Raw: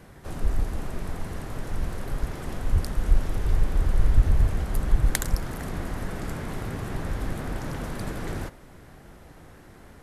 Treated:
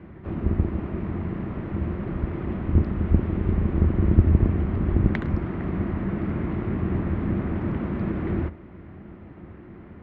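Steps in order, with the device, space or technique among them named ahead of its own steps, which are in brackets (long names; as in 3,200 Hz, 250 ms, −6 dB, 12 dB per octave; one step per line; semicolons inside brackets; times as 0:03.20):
sub-octave bass pedal (sub-octave generator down 2 octaves, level +3 dB; loudspeaker in its box 70–2,400 Hz, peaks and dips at 82 Hz +8 dB, 200 Hz +9 dB, 340 Hz +9 dB, 490 Hz −4 dB, 800 Hz −4 dB, 1,600 Hz −5 dB)
level +2 dB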